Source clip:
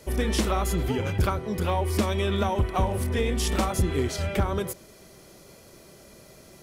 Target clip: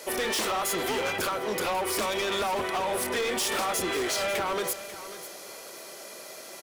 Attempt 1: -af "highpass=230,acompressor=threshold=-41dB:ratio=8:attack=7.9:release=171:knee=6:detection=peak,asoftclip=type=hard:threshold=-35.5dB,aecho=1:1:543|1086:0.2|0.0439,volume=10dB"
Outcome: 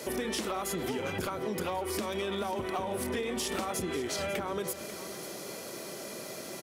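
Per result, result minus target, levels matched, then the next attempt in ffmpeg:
downward compressor: peak gain reduction +12 dB; 250 Hz band +7.0 dB
-af "highpass=230,acompressor=threshold=-29.5dB:ratio=8:attack=7.9:release=171:knee=6:detection=peak,asoftclip=type=hard:threshold=-35.5dB,aecho=1:1:543|1086:0.2|0.0439,volume=10dB"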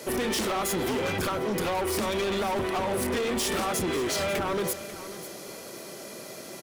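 250 Hz band +6.0 dB
-af "highpass=540,acompressor=threshold=-29.5dB:ratio=8:attack=7.9:release=171:knee=6:detection=peak,asoftclip=type=hard:threshold=-35.5dB,aecho=1:1:543|1086:0.2|0.0439,volume=10dB"

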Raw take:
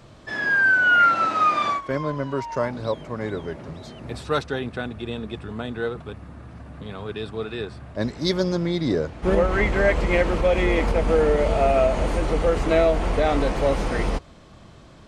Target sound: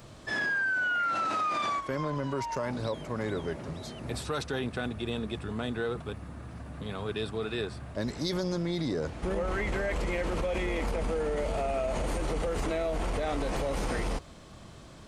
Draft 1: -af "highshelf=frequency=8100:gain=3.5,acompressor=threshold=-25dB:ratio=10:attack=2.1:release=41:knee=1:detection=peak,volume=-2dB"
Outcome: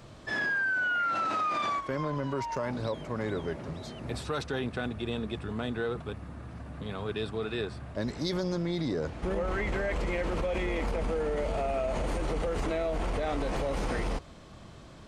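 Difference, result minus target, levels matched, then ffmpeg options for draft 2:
8,000 Hz band −4.0 dB
-af "highshelf=frequency=8100:gain=13,acompressor=threshold=-25dB:ratio=10:attack=2.1:release=41:knee=1:detection=peak,volume=-2dB"

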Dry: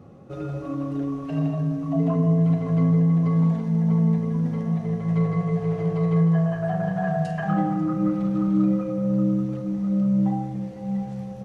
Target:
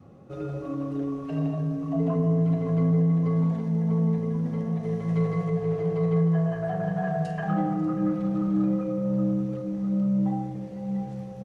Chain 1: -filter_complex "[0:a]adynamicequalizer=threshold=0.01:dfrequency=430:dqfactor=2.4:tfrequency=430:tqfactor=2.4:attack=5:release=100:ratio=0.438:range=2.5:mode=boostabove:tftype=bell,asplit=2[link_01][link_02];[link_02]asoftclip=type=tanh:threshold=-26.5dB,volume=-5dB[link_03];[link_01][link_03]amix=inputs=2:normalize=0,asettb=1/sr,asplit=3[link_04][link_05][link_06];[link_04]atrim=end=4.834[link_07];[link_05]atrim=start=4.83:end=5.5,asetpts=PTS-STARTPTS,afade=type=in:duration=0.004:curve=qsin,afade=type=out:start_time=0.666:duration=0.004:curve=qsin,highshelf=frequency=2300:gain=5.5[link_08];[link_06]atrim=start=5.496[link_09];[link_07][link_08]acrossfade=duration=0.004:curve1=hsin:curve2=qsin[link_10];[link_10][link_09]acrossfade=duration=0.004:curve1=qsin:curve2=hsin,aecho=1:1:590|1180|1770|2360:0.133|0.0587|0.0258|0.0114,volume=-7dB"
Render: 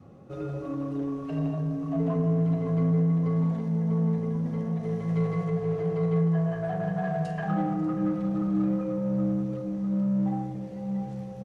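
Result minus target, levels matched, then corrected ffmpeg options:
soft clipping: distortion +11 dB
-filter_complex "[0:a]adynamicequalizer=threshold=0.01:dfrequency=430:dqfactor=2.4:tfrequency=430:tqfactor=2.4:attack=5:release=100:ratio=0.438:range=2.5:mode=boostabove:tftype=bell,asplit=2[link_01][link_02];[link_02]asoftclip=type=tanh:threshold=-15.5dB,volume=-5dB[link_03];[link_01][link_03]amix=inputs=2:normalize=0,asettb=1/sr,asplit=3[link_04][link_05][link_06];[link_04]atrim=end=4.834[link_07];[link_05]atrim=start=4.83:end=5.5,asetpts=PTS-STARTPTS,afade=type=in:duration=0.004:curve=qsin,afade=type=out:start_time=0.666:duration=0.004:curve=qsin,highshelf=frequency=2300:gain=5.5[link_08];[link_06]atrim=start=5.496[link_09];[link_07][link_08]acrossfade=duration=0.004:curve1=hsin:curve2=qsin[link_10];[link_10][link_09]acrossfade=duration=0.004:curve1=qsin:curve2=hsin,aecho=1:1:590|1180|1770|2360:0.133|0.0587|0.0258|0.0114,volume=-7dB"

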